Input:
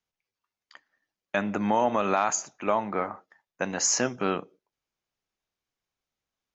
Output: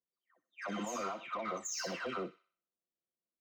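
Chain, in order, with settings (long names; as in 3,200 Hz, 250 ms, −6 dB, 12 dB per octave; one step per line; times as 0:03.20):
every frequency bin delayed by itself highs early, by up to 764 ms
high-pass filter 110 Hz 6 dB per octave
low-pass that shuts in the quiet parts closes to 470 Hz, open at −28 dBFS
low-shelf EQ 220 Hz −11.5 dB
downward compressor 3 to 1, threshold −32 dBFS, peak gain reduction 7.5 dB
brickwall limiter −29 dBFS, peak gain reduction 7 dB
soft clipping −34.5 dBFS, distortion −15 dB
phase-vocoder stretch with locked phases 0.52×
notch comb filter 840 Hz
delay with a high-pass on its return 62 ms, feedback 41%, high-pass 2,400 Hz, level −5 dB
level +3.5 dB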